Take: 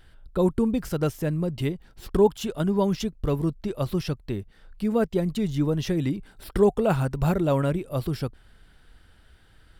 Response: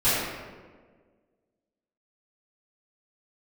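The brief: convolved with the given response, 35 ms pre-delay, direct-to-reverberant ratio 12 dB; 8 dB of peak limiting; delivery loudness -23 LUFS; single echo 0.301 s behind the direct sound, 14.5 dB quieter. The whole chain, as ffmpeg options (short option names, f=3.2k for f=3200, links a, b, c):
-filter_complex "[0:a]alimiter=limit=-16.5dB:level=0:latency=1,aecho=1:1:301:0.188,asplit=2[a][b];[1:a]atrim=start_sample=2205,adelay=35[c];[b][c]afir=irnorm=-1:irlink=0,volume=-28.5dB[d];[a][d]amix=inputs=2:normalize=0,volume=4.5dB"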